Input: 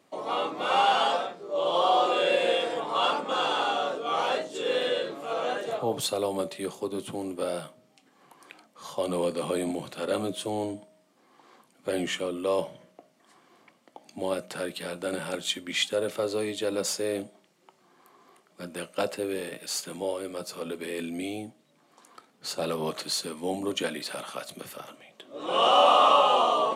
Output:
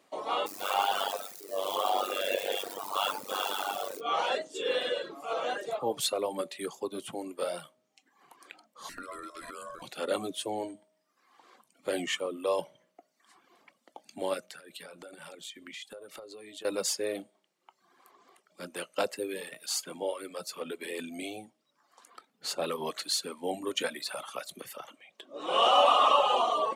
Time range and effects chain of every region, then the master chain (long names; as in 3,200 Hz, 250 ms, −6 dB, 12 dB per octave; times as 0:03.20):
0:00.46–0:04.01: spike at every zero crossing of −25.5 dBFS + amplitude modulation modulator 97 Hz, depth 75%
0:08.89–0:09.82: high-shelf EQ 9,800 Hz +6.5 dB + downward compressor 5 to 1, threshold −34 dBFS + ring modulation 840 Hz
0:14.40–0:16.65: downward compressor 12 to 1, threshold −39 dBFS + notch filter 940 Hz, Q 19
whole clip: reverb reduction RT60 1.1 s; parametric band 83 Hz −11 dB 2.9 octaves